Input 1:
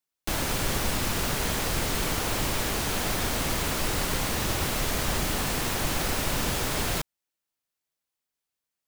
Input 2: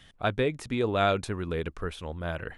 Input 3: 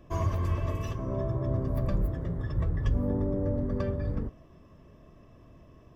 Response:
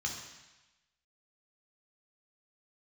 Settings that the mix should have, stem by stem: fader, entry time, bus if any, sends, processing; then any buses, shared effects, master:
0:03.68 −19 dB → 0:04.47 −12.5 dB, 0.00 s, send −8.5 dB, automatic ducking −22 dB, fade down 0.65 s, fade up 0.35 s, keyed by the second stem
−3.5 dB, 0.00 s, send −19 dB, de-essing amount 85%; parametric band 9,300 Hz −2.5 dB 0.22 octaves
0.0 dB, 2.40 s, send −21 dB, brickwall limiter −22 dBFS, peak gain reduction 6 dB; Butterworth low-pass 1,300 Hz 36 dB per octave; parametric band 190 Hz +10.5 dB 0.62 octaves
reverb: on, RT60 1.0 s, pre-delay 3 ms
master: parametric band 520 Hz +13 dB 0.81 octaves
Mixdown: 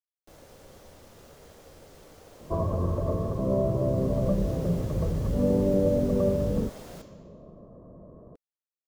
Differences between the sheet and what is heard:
stem 1 −19.0 dB → −26.0 dB
stem 2: muted
stem 3: send off

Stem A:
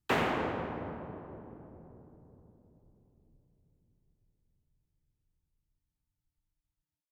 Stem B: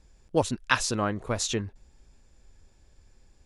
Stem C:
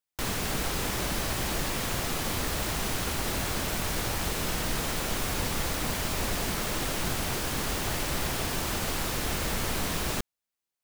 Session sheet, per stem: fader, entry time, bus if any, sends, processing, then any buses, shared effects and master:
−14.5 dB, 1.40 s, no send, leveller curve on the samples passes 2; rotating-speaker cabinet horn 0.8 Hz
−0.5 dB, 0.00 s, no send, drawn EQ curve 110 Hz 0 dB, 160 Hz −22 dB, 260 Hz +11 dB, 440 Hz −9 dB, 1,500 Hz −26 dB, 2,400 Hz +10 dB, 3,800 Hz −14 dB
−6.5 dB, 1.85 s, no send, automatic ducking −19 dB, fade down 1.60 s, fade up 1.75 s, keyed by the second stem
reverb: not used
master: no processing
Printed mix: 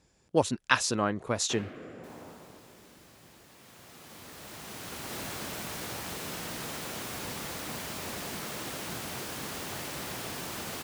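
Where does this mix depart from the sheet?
stem B: missing drawn EQ curve 110 Hz 0 dB, 160 Hz −22 dB, 260 Hz +11 dB, 440 Hz −9 dB, 1,500 Hz −26 dB, 2,400 Hz +10 dB, 3,800 Hz −14 dB
master: extra high-pass filter 120 Hz 12 dB per octave

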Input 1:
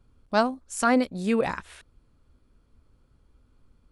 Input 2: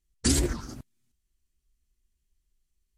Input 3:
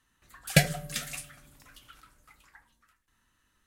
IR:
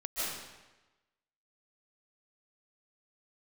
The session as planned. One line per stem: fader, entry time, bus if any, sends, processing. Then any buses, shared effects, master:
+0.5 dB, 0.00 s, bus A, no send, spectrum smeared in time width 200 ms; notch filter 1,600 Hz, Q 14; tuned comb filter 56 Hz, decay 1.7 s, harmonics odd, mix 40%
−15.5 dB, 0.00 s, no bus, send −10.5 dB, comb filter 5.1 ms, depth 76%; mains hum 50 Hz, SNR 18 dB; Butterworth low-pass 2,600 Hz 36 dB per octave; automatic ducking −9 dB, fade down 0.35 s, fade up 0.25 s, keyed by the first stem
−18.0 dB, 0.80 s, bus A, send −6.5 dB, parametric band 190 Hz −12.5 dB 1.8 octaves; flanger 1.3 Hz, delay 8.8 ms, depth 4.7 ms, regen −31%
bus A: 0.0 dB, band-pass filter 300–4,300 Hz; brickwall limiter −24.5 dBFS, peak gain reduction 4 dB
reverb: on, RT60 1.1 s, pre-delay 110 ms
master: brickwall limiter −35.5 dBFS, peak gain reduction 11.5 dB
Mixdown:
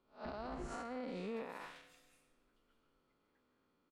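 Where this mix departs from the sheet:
stem 2: missing mains hum 50 Hz, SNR 18 dB
stem 3 −18.0 dB → −28.0 dB

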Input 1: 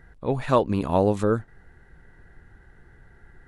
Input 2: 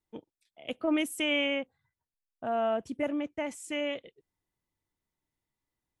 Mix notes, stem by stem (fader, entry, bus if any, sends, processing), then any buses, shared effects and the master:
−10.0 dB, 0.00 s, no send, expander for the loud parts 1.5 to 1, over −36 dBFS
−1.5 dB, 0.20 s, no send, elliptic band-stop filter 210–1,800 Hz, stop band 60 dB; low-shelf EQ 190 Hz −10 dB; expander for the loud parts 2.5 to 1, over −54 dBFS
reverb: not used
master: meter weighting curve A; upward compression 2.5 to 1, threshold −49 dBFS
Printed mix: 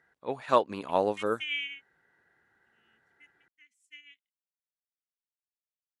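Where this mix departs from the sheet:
stem 1 −10.0 dB → −0.5 dB
master: missing upward compression 2.5 to 1, threshold −49 dBFS

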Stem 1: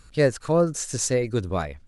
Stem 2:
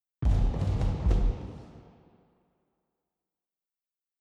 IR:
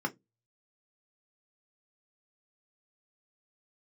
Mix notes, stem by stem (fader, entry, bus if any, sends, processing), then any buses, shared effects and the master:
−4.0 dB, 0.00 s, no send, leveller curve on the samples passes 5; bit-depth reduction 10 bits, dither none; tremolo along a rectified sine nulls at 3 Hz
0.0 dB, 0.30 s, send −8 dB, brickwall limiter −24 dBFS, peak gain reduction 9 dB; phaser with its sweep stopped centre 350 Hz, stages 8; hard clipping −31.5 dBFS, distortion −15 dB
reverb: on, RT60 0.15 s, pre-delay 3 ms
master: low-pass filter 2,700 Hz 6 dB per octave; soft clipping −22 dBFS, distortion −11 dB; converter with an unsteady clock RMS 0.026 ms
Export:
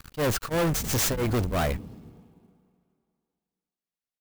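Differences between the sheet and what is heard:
stem 2: missing phaser with its sweep stopped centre 350 Hz, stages 8
master: missing low-pass filter 2,700 Hz 6 dB per octave

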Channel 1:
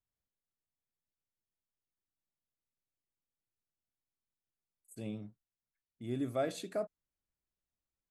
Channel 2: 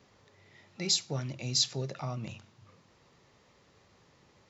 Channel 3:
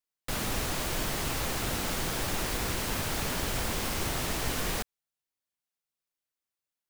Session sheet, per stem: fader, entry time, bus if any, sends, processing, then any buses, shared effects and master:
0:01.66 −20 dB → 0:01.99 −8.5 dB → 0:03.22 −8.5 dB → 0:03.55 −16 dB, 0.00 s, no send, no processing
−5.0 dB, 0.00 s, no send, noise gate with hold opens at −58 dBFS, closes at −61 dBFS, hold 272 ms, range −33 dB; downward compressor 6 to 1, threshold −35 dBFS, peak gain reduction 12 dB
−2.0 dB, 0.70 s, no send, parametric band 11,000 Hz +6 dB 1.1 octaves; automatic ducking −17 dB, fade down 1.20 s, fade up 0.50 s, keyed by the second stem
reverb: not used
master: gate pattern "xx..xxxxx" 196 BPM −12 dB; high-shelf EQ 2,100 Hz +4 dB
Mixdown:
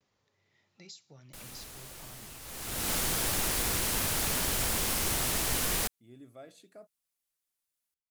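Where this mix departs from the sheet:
stem 2 −5.0 dB → −15.0 dB
stem 3: entry 0.70 s → 1.05 s
master: missing gate pattern "xx..xxxxx" 196 BPM −12 dB

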